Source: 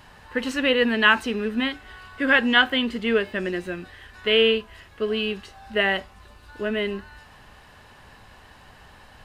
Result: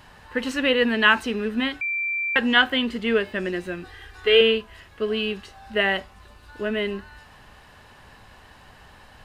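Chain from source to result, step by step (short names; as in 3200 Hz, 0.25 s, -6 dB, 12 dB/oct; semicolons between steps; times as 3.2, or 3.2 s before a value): 1.81–2.36 bleep 2350 Hz -23 dBFS; 3.83–4.41 comb 2.5 ms, depth 75%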